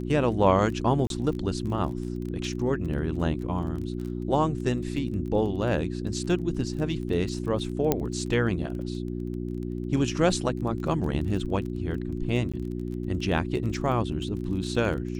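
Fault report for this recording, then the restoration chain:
crackle 22 per s -34 dBFS
hum 60 Hz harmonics 6 -32 dBFS
1.07–1.10 s: dropout 32 ms
7.92 s: pop -8 dBFS
12.52–12.54 s: dropout 16 ms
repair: de-click; de-hum 60 Hz, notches 6; interpolate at 1.07 s, 32 ms; interpolate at 12.52 s, 16 ms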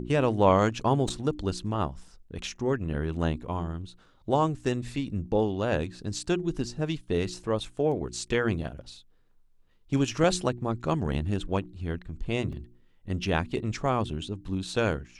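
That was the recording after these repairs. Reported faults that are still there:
7.92 s: pop

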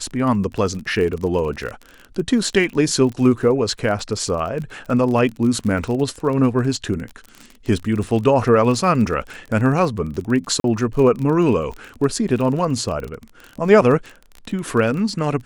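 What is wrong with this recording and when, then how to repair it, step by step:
crackle 31 per s -26 dBFS
10.60–10.64 s: dropout 42 ms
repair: de-click; interpolate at 10.60 s, 42 ms

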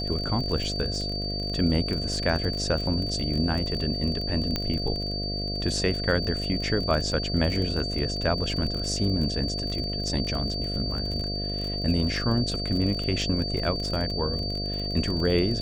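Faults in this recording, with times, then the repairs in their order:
buzz 50 Hz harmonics 14 -32 dBFS
crackle 32 per s -30 dBFS
whine 4.6 kHz -31 dBFS
4.56 s: pop -12 dBFS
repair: de-click; de-hum 50 Hz, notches 14; band-stop 4.6 kHz, Q 30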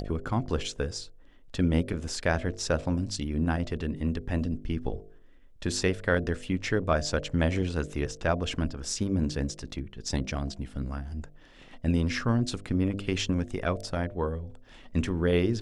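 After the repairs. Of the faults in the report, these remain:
nothing left

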